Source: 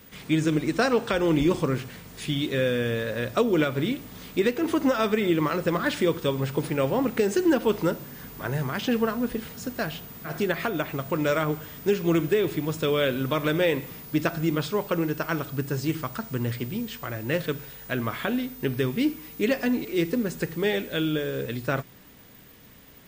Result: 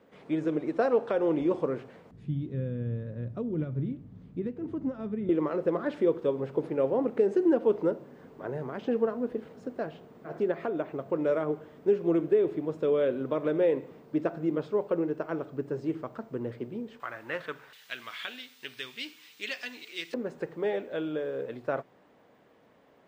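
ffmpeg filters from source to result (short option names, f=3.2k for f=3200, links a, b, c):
-af "asetnsamples=n=441:p=0,asendcmd='2.11 bandpass f 120;5.29 bandpass f 460;17 bandpass f 1200;17.73 bandpass f 3400;20.14 bandpass f 640',bandpass=f=550:t=q:w=1.3:csg=0"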